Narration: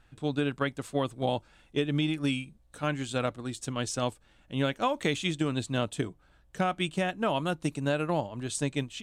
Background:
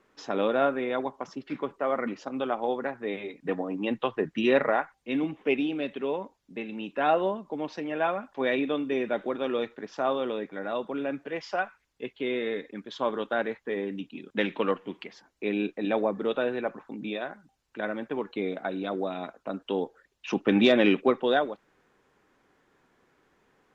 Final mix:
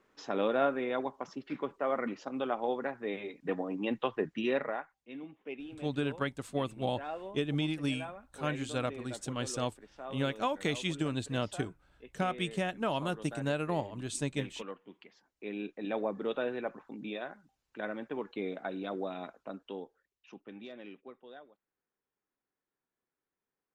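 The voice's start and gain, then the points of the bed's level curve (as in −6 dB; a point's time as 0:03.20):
5.60 s, −4.0 dB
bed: 0:04.19 −4 dB
0:05.13 −16.5 dB
0:14.73 −16.5 dB
0:16.18 −6 dB
0:19.35 −6 dB
0:20.60 −27 dB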